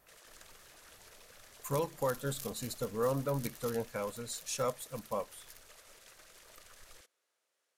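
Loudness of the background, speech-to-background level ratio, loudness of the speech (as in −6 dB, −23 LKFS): −56.0 LKFS, 19.5 dB, −36.5 LKFS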